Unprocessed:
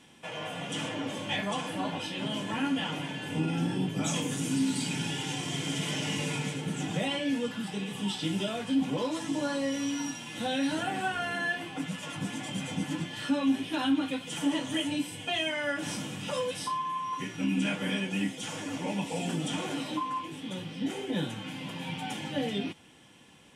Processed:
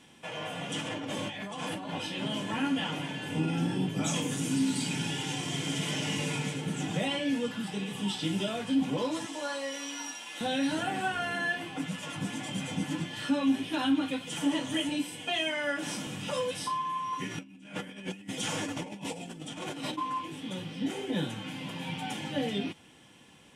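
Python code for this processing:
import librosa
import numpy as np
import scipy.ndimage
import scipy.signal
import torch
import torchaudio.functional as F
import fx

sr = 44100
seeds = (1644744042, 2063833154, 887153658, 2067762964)

y = fx.over_compress(x, sr, threshold_db=-37.0, ratio=-1.0, at=(0.8, 1.91))
y = fx.highpass(y, sr, hz=550.0, slope=12, at=(9.26, 10.41))
y = fx.highpass(y, sr, hz=170.0, slope=12, at=(14.89, 16.07))
y = fx.over_compress(y, sr, threshold_db=-37.0, ratio=-0.5, at=(17.3, 19.97), fade=0.02)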